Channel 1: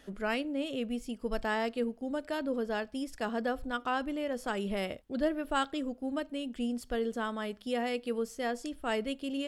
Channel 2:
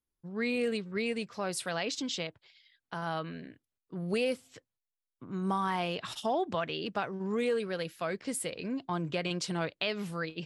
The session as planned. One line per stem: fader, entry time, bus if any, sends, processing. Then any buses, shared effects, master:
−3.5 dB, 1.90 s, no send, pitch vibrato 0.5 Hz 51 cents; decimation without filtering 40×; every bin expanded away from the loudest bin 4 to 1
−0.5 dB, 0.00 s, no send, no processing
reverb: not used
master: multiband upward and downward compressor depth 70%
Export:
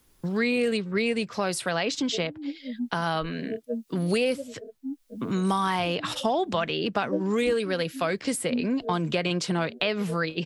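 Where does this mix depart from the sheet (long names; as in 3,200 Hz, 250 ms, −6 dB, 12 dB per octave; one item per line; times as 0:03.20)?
stem 1 −3.5 dB → +2.5 dB
stem 2 −0.5 dB → +6.5 dB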